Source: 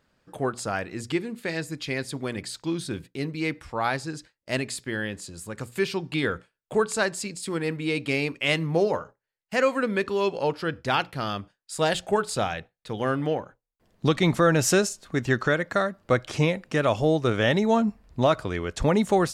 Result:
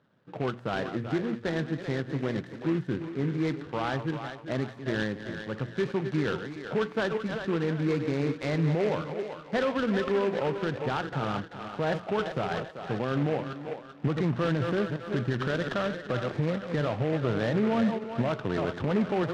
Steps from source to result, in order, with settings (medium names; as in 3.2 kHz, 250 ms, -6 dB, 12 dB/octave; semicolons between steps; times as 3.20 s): chunks repeated in reverse 205 ms, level -13 dB; Chebyshev band-pass 120–1700 Hz, order 3; bass shelf 250 Hz +6 dB; peak limiter -19 dBFS, peak gain reduction 12.5 dB; thinning echo 387 ms, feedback 44%, high-pass 400 Hz, level -7.5 dB; delay time shaken by noise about 1.6 kHz, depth 0.05 ms